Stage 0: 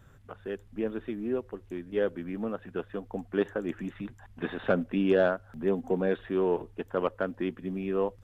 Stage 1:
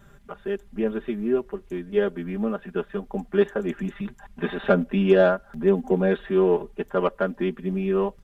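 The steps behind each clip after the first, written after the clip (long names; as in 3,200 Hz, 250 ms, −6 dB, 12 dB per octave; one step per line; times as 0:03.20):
comb filter 5 ms, depth 89%
level +3.5 dB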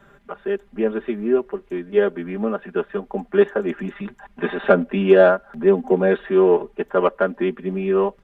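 three-way crossover with the lows and the highs turned down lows −12 dB, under 220 Hz, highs −12 dB, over 3,300 Hz
level +5.5 dB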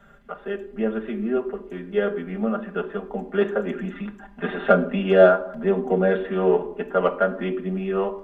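convolution reverb RT60 0.70 s, pre-delay 4 ms, DRR 7 dB
level −3.5 dB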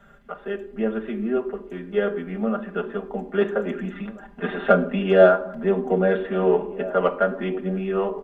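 slap from a distant wall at 280 metres, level −17 dB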